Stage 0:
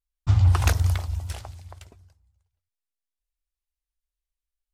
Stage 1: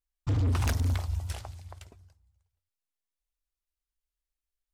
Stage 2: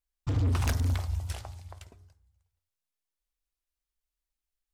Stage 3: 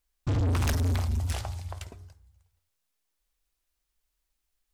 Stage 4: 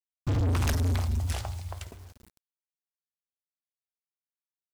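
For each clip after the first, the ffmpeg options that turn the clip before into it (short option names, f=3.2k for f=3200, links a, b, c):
-af "volume=21dB,asoftclip=hard,volume=-21dB,volume=-2.5dB"
-af "bandreject=f=102.8:t=h:w=4,bandreject=f=205.6:t=h:w=4,bandreject=f=308.4:t=h:w=4,bandreject=f=411.2:t=h:w=4,bandreject=f=514:t=h:w=4,bandreject=f=616.8:t=h:w=4,bandreject=f=719.6:t=h:w=4,bandreject=f=822.4:t=h:w=4,bandreject=f=925.2:t=h:w=4,bandreject=f=1.028k:t=h:w=4,bandreject=f=1.1308k:t=h:w=4,bandreject=f=1.2336k:t=h:w=4,bandreject=f=1.3364k:t=h:w=4,bandreject=f=1.4392k:t=h:w=4,bandreject=f=1.542k:t=h:w=4,bandreject=f=1.6448k:t=h:w=4,bandreject=f=1.7476k:t=h:w=4,bandreject=f=1.8504k:t=h:w=4,bandreject=f=1.9532k:t=h:w=4,bandreject=f=2.056k:t=h:w=4,bandreject=f=2.1588k:t=h:w=4"
-af "asoftclip=type=tanh:threshold=-32dB,volume=8.5dB"
-af "acrusher=bits=8:mix=0:aa=0.000001"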